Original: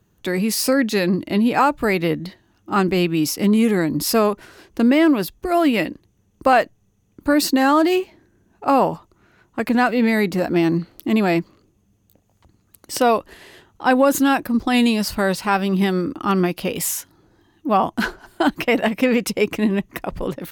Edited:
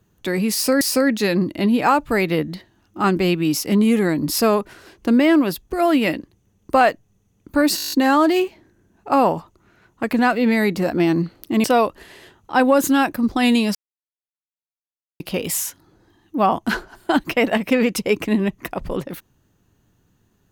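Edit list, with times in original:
0:00.53–0:00.81: repeat, 2 plays
0:07.48: stutter 0.02 s, 9 plays
0:11.20–0:12.95: remove
0:15.06–0:16.51: silence

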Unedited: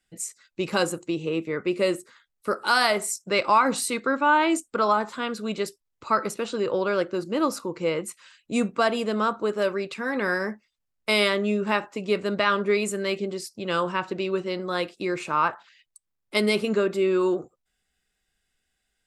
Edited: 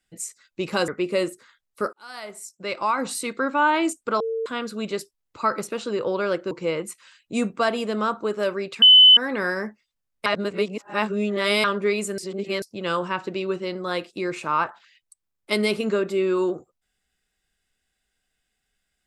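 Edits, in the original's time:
0:00.88–0:01.55: remove
0:02.60–0:04.18: fade in
0:04.87–0:05.13: beep over 451 Hz −23.5 dBFS
0:07.18–0:07.70: remove
0:10.01: insert tone 3,020 Hz −7.5 dBFS 0.35 s
0:11.10–0:12.48: reverse
0:13.02–0:13.46: reverse

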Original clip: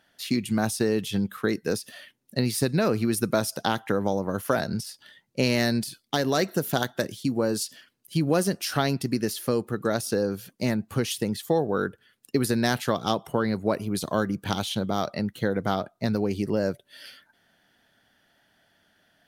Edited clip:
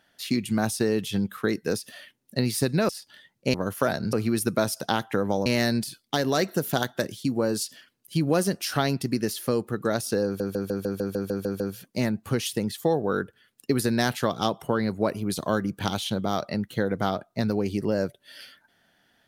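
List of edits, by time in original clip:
0:02.89–0:04.22: swap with 0:04.81–0:05.46
0:10.25: stutter 0.15 s, 10 plays

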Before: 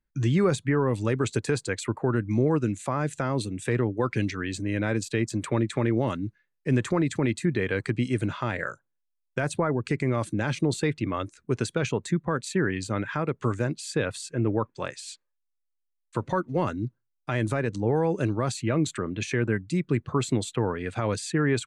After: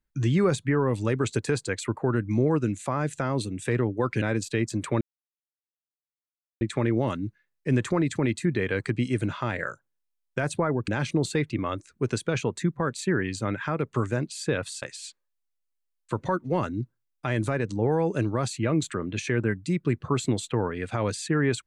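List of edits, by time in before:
0:04.22–0:04.82: remove
0:05.61: splice in silence 1.60 s
0:09.88–0:10.36: remove
0:14.30–0:14.86: remove

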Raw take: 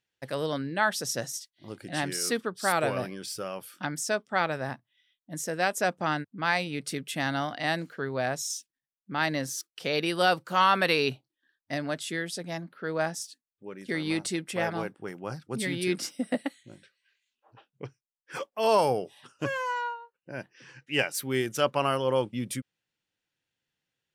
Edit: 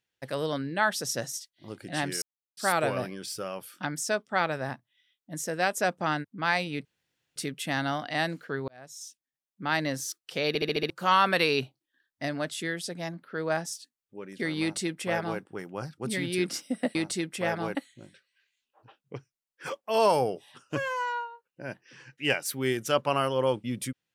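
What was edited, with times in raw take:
0:02.22–0:02.57: silence
0:06.85: splice in room tone 0.51 s
0:08.17–0:09.16: fade in linear
0:09.97: stutter in place 0.07 s, 6 plays
0:14.10–0:14.90: duplicate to 0:16.44

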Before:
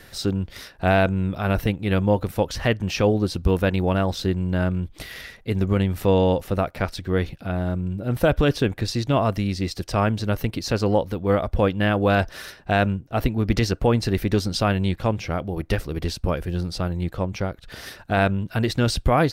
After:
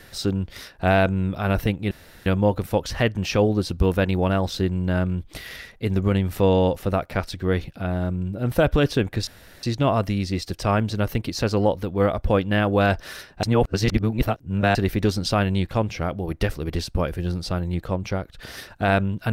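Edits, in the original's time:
0:01.91: splice in room tone 0.35 s
0:08.92: splice in room tone 0.36 s
0:12.72–0:14.04: reverse

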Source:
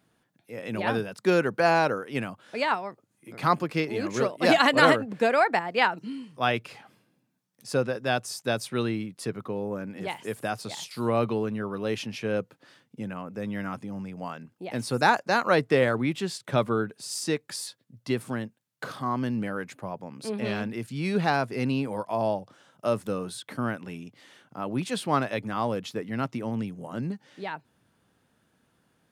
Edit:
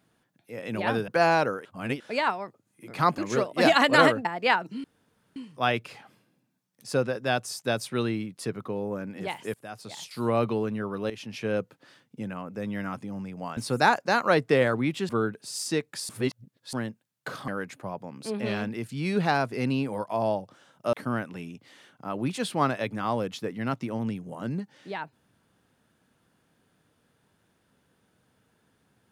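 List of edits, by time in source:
0:01.08–0:01.52: remove
0:02.09–0:02.44: reverse
0:03.62–0:04.02: remove
0:05.09–0:05.57: remove
0:06.16: splice in room tone 0.52 s
0:10.34–0:11.03: fade in, from −19 dB
0:11.90–0:12.23: fade in, from −13.5 dB
0:14.37–0:14.78: remove
0:16.30–0:16.65: remove
0:17.65–0:18.29: reverse
0:19.04–0:19.47: remove
0:22.92–0:23.45: remove

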